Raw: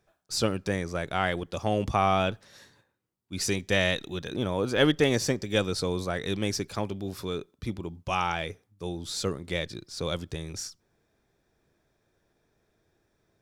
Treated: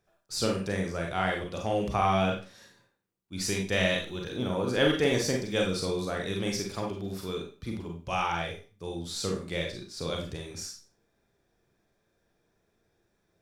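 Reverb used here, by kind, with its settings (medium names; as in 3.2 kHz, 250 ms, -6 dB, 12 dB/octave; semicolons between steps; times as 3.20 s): Schroeder reverb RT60 0.35 s, combs from 32 ms, DRR 0.5 dB; trim -4 dB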